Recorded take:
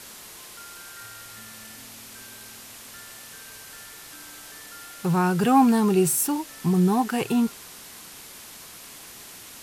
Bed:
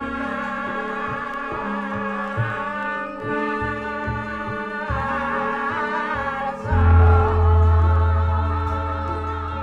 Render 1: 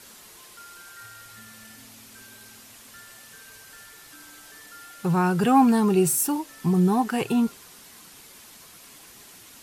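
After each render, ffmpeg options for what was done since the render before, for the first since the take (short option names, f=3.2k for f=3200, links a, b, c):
-af "afftdn=nr=6:nf=-44"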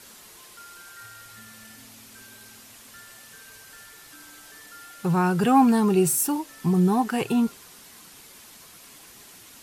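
-af anull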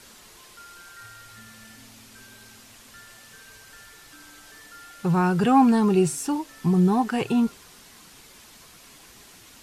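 -filter_complex "[0:a]lowshelf=f=65:g=9,acrossover=split=8100[a][b];[b]acompressor=threshold=-55dB:ratio=4:attack=1:release=60[c];[a][c]amix=inputs=2:normalize=0"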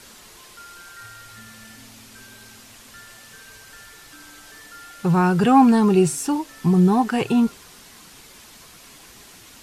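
-af "volume=3.5dB"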